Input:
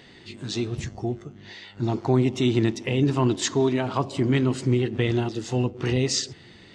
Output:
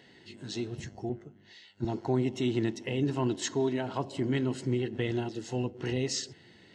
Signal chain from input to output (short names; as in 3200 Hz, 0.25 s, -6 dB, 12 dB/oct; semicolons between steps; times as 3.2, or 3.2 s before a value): notch comb 1200 Hz; 1.09–1.85 three-band expander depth 70%; gain -6.5 dB